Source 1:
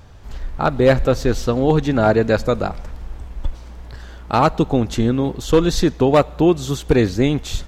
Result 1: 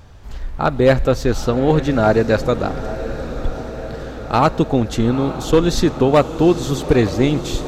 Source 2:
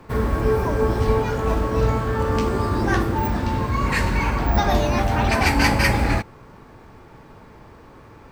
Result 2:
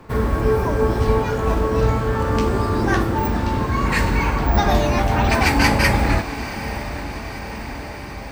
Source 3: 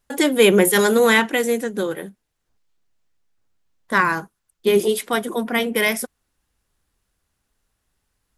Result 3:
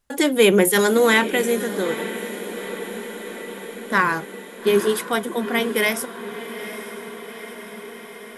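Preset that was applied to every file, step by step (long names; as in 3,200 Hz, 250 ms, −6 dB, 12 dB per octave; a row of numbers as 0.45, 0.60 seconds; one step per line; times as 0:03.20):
feedback delay with all-pass diffusion 871 ms, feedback 69%, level −12.5 dB
normalise the peak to −3 dBFS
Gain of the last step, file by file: +0.5, +1.5, −1.0 decibels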